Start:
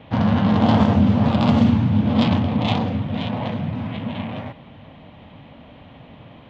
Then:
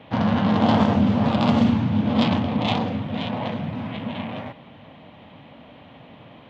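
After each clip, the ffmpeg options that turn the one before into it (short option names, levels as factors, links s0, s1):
-af "highpass=f=180:p=1"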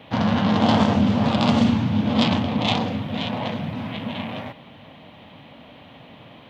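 -af "highshelf=f=4000:g=10.5"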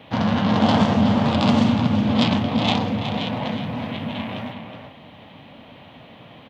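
-filter_complex "[0:a]asplit=2[s0][s1];[s1]adelay=367.3,volume=0.501,highshelf=f=4000:g=-8.27[s2];[s0][s2]amix=inputs=2:normalize=0"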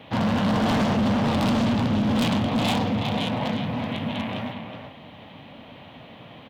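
-af "asoftclip=type=hard:threshold=0.112"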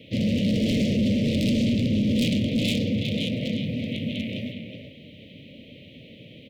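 -af "asuperstop=centerf=1100:order=12:qfactor=0.72"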